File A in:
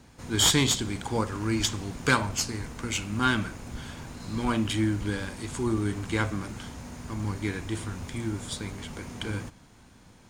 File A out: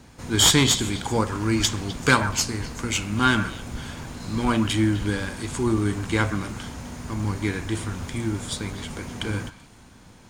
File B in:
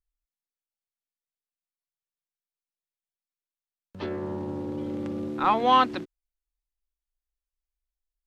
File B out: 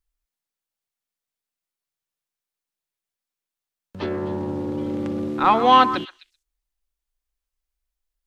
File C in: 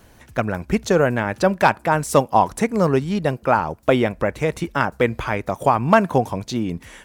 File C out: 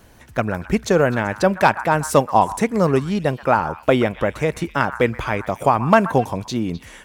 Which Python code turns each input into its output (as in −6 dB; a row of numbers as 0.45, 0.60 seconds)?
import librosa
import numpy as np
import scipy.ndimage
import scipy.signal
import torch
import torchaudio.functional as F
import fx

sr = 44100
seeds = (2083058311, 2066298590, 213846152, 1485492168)

y = fx.echo_stepped(x, sr, ms=128, hz=1300.0, octaves=1.4, feedback_pct=70, wet_db=-10.5)
y = librosa.util.normalize(y) * 10.0 ** (-2 / 20.0)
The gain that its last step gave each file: +4.5, +5.5, +0.5 decibels